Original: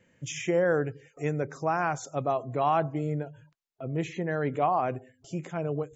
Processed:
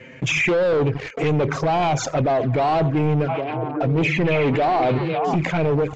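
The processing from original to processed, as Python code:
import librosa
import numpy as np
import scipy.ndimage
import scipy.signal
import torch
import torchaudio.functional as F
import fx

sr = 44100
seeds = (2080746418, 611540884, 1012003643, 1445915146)

y = fx.highpass(x, sr, hz=120.0, slope=6)
y = fx.peak_eq(y, sr, hz=2300.0, db=8.5, octaves=0.38)
y = fx.leveller(y, sr, passes=3)
y = fx.env_flanger(y, sr, rest_ms=7.8, full_db=-18.0)
y = 10.0 ** (-22.5 / 20.0) * np.tanh(y / 10.0 ** (-22.5 / 20.0))
y = fx.air_absorb(y, sr, metres=160.0)
y = fx.echo_stepped(y, sr, ms=272, hz=2700.0, octaves=-1.4, feedback_pct=70, wet_db=-1.5, at=(3.28, 5.35), fade=0.02)
y = fx.env_flatten(y, sr, amount_pct=50)
y = y * librosa.db_to_amplitude(7.0)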